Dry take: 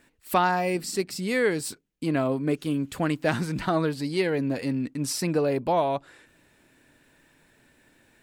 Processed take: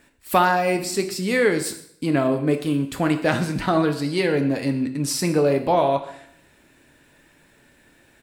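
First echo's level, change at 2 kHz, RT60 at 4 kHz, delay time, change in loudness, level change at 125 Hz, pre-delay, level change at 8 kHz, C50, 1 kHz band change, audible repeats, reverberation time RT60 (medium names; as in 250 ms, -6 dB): -19.0 dB, +5.0 dB, 0.60 s, 119 ms, +5.0 dB, +4.5 dB, 4 ms, +5.0 dB, 11.0 dB, +5.0 dB, 1, 0.65 s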